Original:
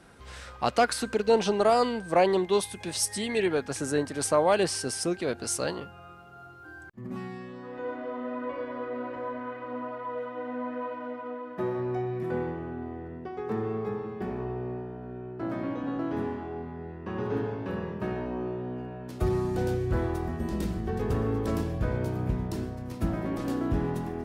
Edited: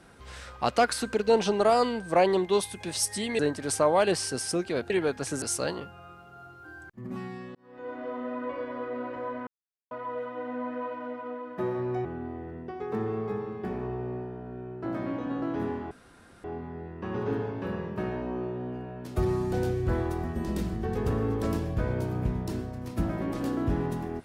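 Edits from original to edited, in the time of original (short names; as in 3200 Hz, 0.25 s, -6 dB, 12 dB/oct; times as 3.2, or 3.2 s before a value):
3.39–3.91 move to 5.42
7.55–8.06 fade in
9.47–9.91 mute
12.05–12.62 cut
16.48 insert room tone 0.53 s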